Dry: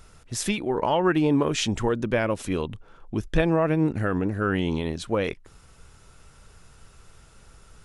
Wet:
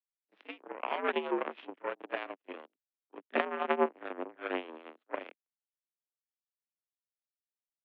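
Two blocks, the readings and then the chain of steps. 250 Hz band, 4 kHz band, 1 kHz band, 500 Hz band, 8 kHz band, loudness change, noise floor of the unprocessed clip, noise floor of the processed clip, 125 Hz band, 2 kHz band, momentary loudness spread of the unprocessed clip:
-17.5 dB, -14.0 dB, -6.5 dB, -10.0 dB, under -40 dB, -10.5 dB, -53 dBFS, under -85 dBFS, under -35 dB, -7.5 dB, 10 LU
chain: reverse echo 32 ms -6.5 dB; power-law curve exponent 3; mistuned SSB +76 Hz 190–3000 Hz; gain +1.5 dB

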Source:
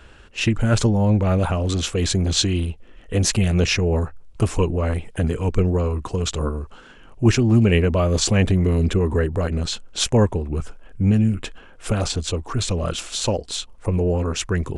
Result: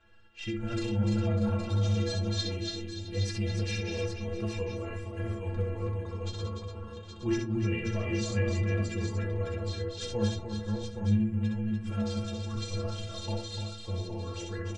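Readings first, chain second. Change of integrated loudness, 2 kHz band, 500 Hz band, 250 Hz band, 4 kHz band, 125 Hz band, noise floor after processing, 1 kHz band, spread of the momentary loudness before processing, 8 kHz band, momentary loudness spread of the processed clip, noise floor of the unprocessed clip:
-11.5 dB, -11.0 dB, -12.0 dB, -10.5 dB, -12.5 dB, -10.5 dB, -43 dBFS, -13.5 dB, 9 LU, -17.5 dB, 9 LU, -46 dBFS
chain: reverse delay 0.317 s, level -4 dB; LPF 4900 Hz 12 dB/oct; metallic resonator 100 Hz, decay 0.63 s, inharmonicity 0.03; de-hum 110 Hz, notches 14; on a send: tapped delay 64/295/662/819 ms -5/-7/-16/-7.5 dB; on the sum: gain -2 dB

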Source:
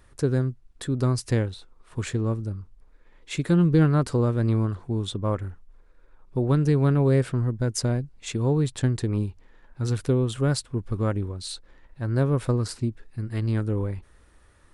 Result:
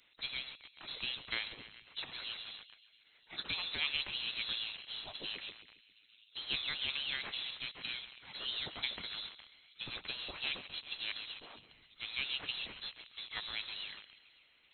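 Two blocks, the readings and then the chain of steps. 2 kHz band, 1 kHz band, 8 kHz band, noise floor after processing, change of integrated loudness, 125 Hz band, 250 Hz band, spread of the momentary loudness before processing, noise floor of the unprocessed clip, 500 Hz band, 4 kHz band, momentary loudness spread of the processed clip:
-0.5 dB, -15.5 dB, under -40 dB, -68 dBFS, -14.0 dB, -39.0 dB, -33.5 dB, 13 LU, -56 dBFS, -29.5 dB, +4.5 dB, 13 LU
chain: on a send: tape echo 0.135 s, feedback 77%, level -11.5 dB, low-pass 3000 Hz; on the sum: harmonic-percussive split percussive +7 dB; in parallel at -10 dB: bit-crush 5-bit; on the sum: inverted band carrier 3900 Hz; spectral gate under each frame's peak -15 dB weak; gain -8.5 dB

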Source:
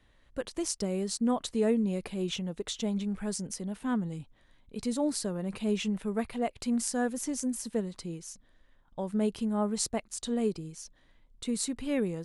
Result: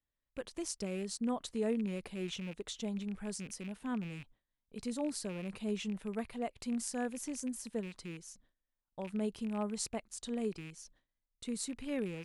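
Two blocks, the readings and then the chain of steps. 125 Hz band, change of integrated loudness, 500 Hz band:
-7.0 dB, -7.0 dB, -7.0 dB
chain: rattling part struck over -43 dBFS, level -33 dBFS; gate with hold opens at -49 dBFS; gain -7 dB

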